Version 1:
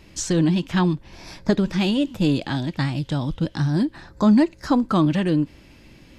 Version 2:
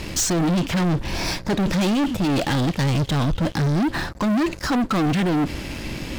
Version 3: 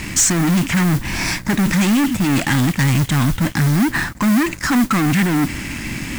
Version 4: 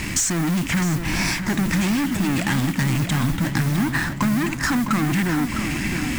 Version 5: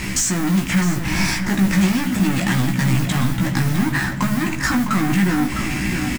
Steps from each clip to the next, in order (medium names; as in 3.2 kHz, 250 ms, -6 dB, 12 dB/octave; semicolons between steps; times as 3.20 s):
reverse; compression 6:1, threshold -25 dBFS, peak gain reduction 13 dB; reverse; waveshaping leveller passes 5
graphic EQ 125/250/500/1000/2000/4000/8000 Hz +4/+7/-9/+3/+10/-4/+11 dB; modulation noise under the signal 17 dB
compression, threshold -19 dBFS, peak gain reduction 7.5 dB; filtered feedback delay 657 ms, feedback 62%, low-pass 4.1 kHz, level -8 dB
doubling 16 ms -4 dB; on a send at -11 dB: reverberation RT60 0.90 s, pre-delay 5 ms